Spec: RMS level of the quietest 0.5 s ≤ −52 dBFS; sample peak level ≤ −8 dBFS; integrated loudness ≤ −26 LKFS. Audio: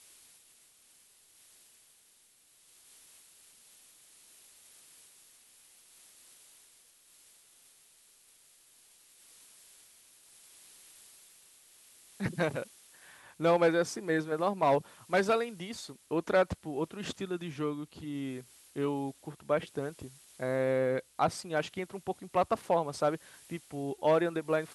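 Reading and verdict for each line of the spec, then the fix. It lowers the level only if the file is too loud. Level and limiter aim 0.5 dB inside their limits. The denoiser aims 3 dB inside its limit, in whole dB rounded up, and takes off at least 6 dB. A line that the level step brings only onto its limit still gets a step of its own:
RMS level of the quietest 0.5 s −64 dBFS: in spec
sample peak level −15.5 dBFS: in spec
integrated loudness −32.0 LKFS: in spec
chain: no processing needed

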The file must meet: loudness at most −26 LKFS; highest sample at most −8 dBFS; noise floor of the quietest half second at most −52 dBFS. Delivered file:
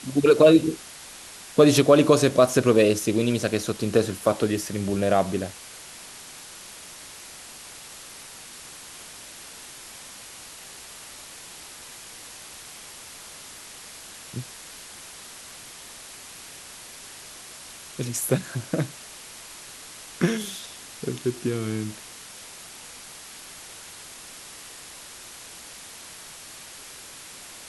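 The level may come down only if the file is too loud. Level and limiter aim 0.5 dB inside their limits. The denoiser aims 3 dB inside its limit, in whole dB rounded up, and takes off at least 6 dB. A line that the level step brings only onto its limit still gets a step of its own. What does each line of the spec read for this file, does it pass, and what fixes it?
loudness −22.5 LKFS: out of spec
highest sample −5.0 dBFS: out of spec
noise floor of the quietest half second −43 dBFS: out of spec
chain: broadband denoise 8 dB, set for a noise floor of −43 dBFS
level −4 dB

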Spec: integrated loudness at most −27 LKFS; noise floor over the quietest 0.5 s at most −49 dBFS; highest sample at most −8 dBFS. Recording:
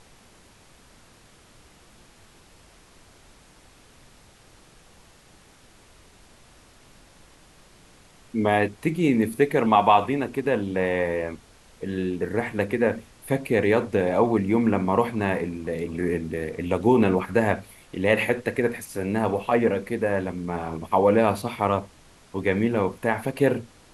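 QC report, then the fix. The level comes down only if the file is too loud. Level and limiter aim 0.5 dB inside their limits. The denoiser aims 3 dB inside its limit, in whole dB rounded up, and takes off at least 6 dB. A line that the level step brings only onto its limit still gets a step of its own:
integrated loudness −24.0 LKFS: out of spec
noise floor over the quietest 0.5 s −54 dBFS: in spec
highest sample −5.0 dBFS: out of spec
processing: level −3.5 dB

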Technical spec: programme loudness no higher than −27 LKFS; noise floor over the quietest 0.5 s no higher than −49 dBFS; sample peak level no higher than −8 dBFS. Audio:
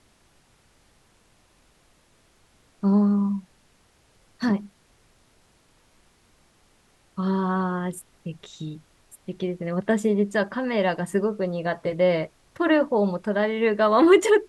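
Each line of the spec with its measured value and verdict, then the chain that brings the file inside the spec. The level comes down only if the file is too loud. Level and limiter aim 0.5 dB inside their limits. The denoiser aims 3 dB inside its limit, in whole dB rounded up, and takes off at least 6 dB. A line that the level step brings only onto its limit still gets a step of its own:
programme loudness −23.5 LKFS: out of spec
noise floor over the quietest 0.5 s −61 dBFS: in spec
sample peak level −6.0 dBFS: out of spec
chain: level −4 dB

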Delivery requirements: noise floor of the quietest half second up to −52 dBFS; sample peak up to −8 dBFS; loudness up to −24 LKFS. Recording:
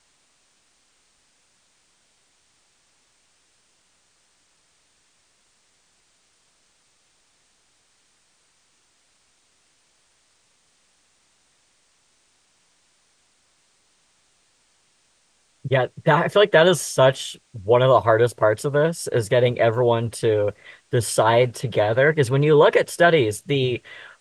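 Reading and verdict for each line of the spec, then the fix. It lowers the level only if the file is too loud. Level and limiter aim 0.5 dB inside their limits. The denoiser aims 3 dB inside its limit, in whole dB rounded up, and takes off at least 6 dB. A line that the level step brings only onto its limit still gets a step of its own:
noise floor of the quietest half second −63 dBFS: in spec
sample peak −4.5 dBFS: out of spec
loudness −19.0 LKFS: out of spec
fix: level −5.5 dB

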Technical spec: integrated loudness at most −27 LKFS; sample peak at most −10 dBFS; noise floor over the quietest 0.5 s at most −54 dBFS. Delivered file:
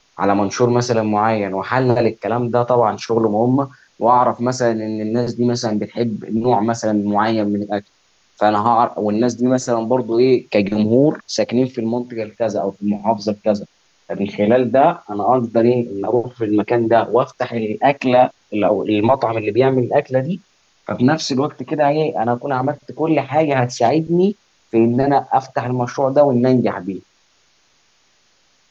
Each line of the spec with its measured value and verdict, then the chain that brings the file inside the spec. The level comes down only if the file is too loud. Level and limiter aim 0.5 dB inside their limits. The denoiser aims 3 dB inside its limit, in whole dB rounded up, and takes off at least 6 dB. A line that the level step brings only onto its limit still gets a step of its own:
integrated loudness −17.5 LKFS: out of spec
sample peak −2.5 dBFS: out of spec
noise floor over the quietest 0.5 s −58 dBFS: in spec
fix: level −10 dB

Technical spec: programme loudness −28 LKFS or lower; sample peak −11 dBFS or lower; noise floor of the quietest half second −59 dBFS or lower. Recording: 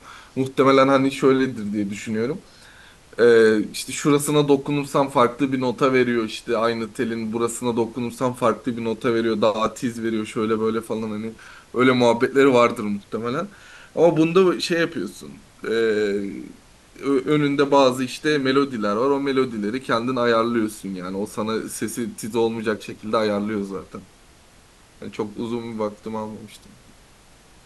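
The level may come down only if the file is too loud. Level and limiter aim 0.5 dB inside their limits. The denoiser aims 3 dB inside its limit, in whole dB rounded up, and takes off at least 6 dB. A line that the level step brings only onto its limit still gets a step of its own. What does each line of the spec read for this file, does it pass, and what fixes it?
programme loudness −21.5 LKFS: out of spec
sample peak −4.5 dBFS: out of spec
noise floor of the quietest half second −51 dBFS: out of spec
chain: broadband denoise 6 dB, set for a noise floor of −51 dBFS
level −7 dB

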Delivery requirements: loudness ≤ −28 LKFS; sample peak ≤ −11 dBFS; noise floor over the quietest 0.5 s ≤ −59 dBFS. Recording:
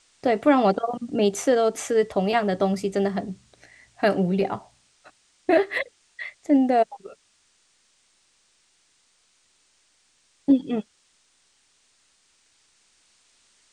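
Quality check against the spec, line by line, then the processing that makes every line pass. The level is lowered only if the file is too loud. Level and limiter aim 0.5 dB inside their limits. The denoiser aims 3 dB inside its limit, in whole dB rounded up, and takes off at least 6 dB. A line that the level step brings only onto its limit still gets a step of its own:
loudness −23.5 LKFS: out of spec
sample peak −7.5 dBFS: out of spec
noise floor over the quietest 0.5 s −65 dBFS: in spec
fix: level −5 dB

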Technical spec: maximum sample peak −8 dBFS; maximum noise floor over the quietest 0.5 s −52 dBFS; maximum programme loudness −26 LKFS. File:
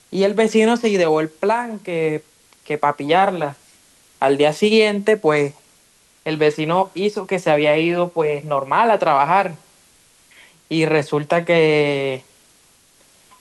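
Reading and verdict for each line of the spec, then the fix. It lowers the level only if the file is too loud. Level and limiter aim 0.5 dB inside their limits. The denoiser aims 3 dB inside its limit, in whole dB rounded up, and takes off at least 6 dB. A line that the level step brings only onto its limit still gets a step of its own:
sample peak −5.0 dBFS: out of spec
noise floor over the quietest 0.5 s −55 dBFS: in spec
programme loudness −18.0 LKFS: out of spec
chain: level −8.5 dB

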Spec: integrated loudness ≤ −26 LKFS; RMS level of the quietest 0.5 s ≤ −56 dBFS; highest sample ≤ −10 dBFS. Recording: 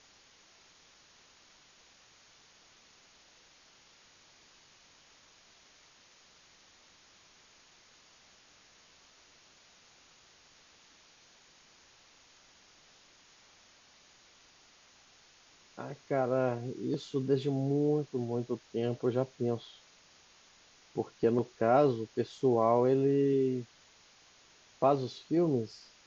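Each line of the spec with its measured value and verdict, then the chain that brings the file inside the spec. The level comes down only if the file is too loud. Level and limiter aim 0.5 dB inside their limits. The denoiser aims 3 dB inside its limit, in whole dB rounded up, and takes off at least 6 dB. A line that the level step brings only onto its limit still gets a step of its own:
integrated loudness −31.0 LKFS: in spec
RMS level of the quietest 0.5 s −62 dBFS: in spec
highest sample −13.5 dBFS: in spec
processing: no processing needed

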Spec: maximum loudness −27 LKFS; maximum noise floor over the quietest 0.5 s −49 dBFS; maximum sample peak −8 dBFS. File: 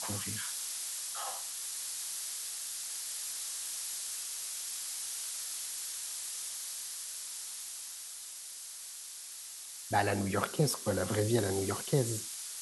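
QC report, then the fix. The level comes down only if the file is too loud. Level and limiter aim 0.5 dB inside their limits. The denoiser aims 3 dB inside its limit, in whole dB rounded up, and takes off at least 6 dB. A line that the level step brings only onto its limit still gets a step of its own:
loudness −35.5 LKFS: in spec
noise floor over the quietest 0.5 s −46 dBFS: out of spec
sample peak −14.5 dBFS: in spec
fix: broadband denoise 6 dB, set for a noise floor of −46 dBFS

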